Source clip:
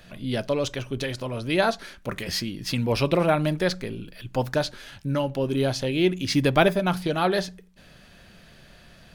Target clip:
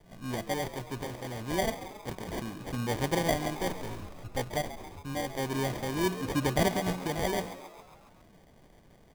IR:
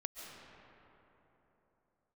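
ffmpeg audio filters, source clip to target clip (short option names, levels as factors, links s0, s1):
-filter_complex "[0:a]asettb=1/sr,asplit=3[s0][s1][s2];[s0]atrim=end=3.354[s3];[s1]atrim=start=3.35:end=5.39,asetpts=PTS-STARTPTS,afade=t=in:d=0.004:c=qsin,afade=t=out:st=2.036:d=0.004:c=qsin,lowshelf=f=110:t=q:w=3:g=8.5[s4];[s2]atrim=start=5.386[s5];[s3][s4]acrossfade=d=0.004:c1=hsin:c2=qsin[s6];[s6][s5]acrossfade=d=0.004:c1=qsin:c2=hsin,acrusher=samples=33:mix=1:aa=0.000001,asplit=2[s7][s8];[s8]asplit=6[s9][s10][s11][s12][s13][s14];[s9]adelay=136,afreqshift=86,volume=0.211[s15];[s10]adelay=272,afreqshift=172,volume=0.127[s16];[s11]adelay=408,afreqshift=258,volume=0.0759[s17];[s12]adelay=544,afreqshift=344,volume=0.0457[s18];[s13]adelay=680,afreqshift=430,volume=0.0275[s19];[s14]adelay=816,afreqshift=516,volume=0.0164[s20];[s15][s16][s17][s18][s19][s20]amix=inputs=6:normalize=0[s21];[s7][s21]amix=inputs=2:normalize=0,volume=0.422"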